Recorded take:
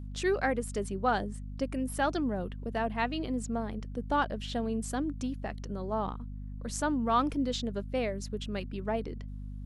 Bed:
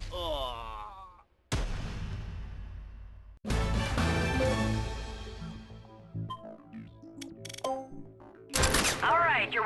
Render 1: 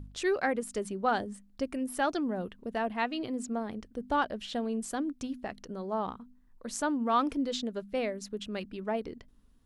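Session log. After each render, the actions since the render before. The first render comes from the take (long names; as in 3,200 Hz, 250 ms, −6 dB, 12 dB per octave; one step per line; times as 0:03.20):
hum removal 50 Hz, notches 5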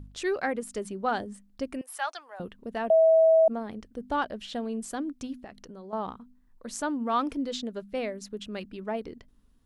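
0:01.81–0:02.40: high-pass filter 750 Hz 24 dB per octave
0:02.90–0:03.48: beep over 647 Hz −15.5 dBFS
0:05.44–0:05.93: downward compressor 3 to 1, threshold −42 dBFS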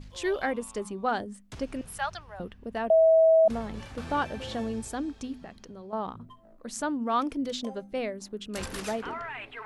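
mix in bed −12 dB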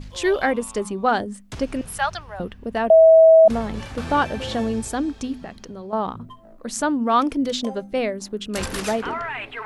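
level +8.5 dB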